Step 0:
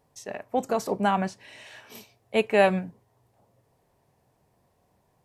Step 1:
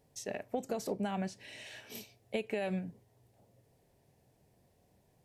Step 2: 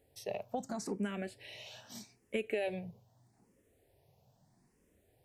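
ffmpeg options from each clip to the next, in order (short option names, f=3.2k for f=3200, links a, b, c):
-af "alimiter=limit=-13.5dB:level=0:latency=1:release=79,equalizer=f=1.1k:w=1.5:g=-11,acompressor=threshold=-32dB:ratio=6"
-filter_complex "[0:a]asplit=2[a][b];[b]afreqshift=0.79[c];[a][c]amix=inputs=2:normalize=1,volume=2dB"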